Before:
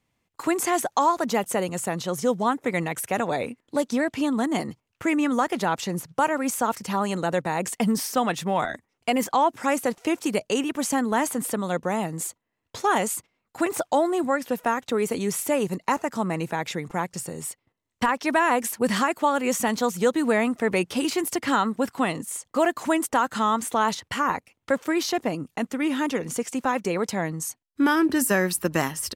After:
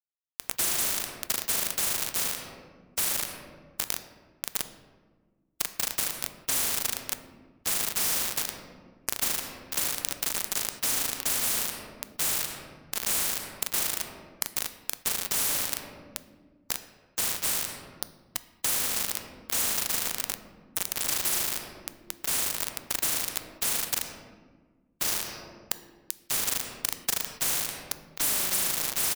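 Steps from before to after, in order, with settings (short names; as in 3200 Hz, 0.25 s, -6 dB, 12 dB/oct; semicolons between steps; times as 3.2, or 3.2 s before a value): dynamic EQ 3200 Hz, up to -8 dB, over -45 dBFS, Q 1.2; in parallel at -3 dB: limiter -17.5 dBFS, peak gain reduction 8 dB; on the sum: brick-wall FIR band-stop 710–4400 Hz; pre-emphasis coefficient 0.97; comb 1 ms, depth 42%; flutter echo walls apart 6.5 m, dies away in 0.91 s; sample gate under -25 dBFS; on a send at -12.5 dB: reverb RT60 1.5 s, pre-delay 4 ms; on the sum: spectral compressor 4:1; gain +5.5 dB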